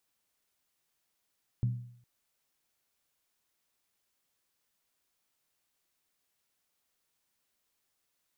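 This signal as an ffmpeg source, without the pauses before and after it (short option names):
-f lavfi -i "aevalsrc='0.0668*pow(10,-3*t/0.63)*sin(2*PI*121*t)+0.0168*pow(10,-3*t/0.499)*sin(2*PI*192.9*t)+0.00422*pow(10,-3*t/0.431)*sin(2*PI*258.5*t)+0.00106*pow(10,-3*t/0.416)*sin(2*PI*277.8*t)+0.000266*pow(10,-3*t/0.387)*sin(2*PI*321*t)':d=0.41:s=44100"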